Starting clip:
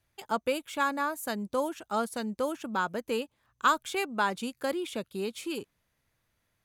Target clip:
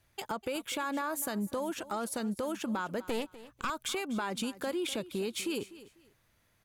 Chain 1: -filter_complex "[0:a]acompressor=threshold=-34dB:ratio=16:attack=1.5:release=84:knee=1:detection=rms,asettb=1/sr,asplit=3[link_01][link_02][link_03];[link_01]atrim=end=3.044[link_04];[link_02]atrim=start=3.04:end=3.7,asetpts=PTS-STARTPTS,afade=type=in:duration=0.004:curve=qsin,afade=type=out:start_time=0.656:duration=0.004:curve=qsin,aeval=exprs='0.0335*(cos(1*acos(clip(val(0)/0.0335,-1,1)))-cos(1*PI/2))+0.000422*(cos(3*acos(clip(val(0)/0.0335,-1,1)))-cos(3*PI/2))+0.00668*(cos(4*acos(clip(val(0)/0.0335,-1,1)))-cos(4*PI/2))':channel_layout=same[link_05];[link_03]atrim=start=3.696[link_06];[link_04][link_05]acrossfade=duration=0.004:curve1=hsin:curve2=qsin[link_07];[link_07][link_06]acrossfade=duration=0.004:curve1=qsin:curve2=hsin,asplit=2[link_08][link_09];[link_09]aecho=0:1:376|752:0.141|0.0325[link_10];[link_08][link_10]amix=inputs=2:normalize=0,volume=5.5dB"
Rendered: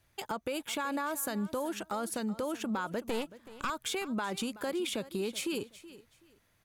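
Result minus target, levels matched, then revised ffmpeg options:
echo 128 ms late
-filter_complex "[0:a]acompressor=threshold=-34dB:ratio=16:attack=1.5:release=84:knee=1:detection=rms,asettb=1/sr,asplit=3[link_01][link_02][link_03];[link_01]atrim=end=3.044[link_04];[link_02]atrim=start=3.04:end=3.7,asetpts=PTS-STARTPTS,afade=type=in:duration=0.004:curve=qsin,afade=type=out:start_time=0.656:duration=0.004:curve=qsin,aeval=exprs='0.0335*(cos(1*acos(clip(val(0)/0.0335,-1,1)))-cos(1*PI/2))+0.000422*(cos(3*acos(clip(val(0)/0.0335,-1,1)))-cos(3*PI/2))+0.00668*(cos(4*acos(clip(val(0)/0.0335,-1,1)))-cos(4*PI/2))':channel_layout=same[link_05];[link_03]atrim=start=3.696[link_06];[link_04][link_05]acrossfade=duration=0.004:curve1=hsin:curve2=qsin[link_07];[link_07][link_06]acrossfade=duration=0.004:curve1=qsin:curve2=hsin,asplit=2[link_08][link_09];[link_09]aecho=0:1:248|496:0.141|0.0325[link_10];[link_08][link_10]amix=inputs=2:normalize=0,volume=5.5dB"

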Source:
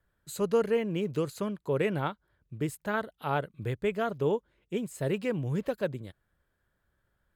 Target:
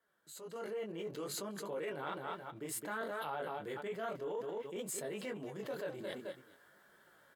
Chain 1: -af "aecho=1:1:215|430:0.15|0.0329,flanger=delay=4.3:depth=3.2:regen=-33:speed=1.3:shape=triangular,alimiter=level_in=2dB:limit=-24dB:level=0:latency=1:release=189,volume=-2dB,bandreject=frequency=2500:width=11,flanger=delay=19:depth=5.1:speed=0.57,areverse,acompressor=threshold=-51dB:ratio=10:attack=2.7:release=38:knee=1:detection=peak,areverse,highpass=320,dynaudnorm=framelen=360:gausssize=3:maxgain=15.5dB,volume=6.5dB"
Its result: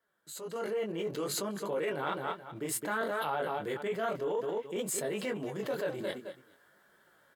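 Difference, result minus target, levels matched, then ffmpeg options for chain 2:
downward compressor: peak gain reduction −7 dB
-af "aecho=1:1:215|430:0.15|0.0329,flanger=delay=4.3:depth=3.2:regen=-33:speed=1.3:shape=triangular,alimiter=level_in=2dB:limit=-24dB:level=0:latency=1:release=189,volume=-2dB,bandreject=frequency=2500:width=11,flanger=delay=19:depth=5.1:speed=0.57,areverse,acompressor=threshold=-59dB:ratio=10:attack=2.7:release=38:knee=1:detection=peak,areverse,highpass=320,dynaudnorm=framelen=360:gausssize=3:maxgain=15.5dB,volume=6.5dB"

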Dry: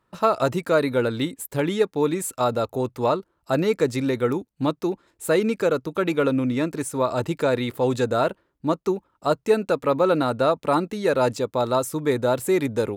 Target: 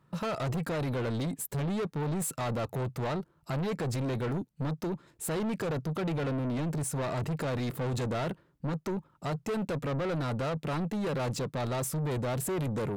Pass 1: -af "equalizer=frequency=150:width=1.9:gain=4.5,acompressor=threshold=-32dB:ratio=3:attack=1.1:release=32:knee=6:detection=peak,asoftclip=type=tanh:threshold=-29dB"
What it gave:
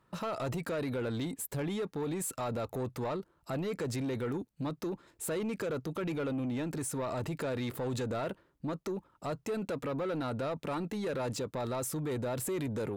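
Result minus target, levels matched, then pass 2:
downward compressor: peak gain reduction +6.5 dB; 125 Hz band −3.5 dB
-af "equalizer=frequency=150:width=1.9:gain=15.5,acompressor=threshold=-20.5dB:ratio=3:attack=1.1:release=32:knee=6:detection=peak,asoftclip=type=tanh:threshold=-29dB"

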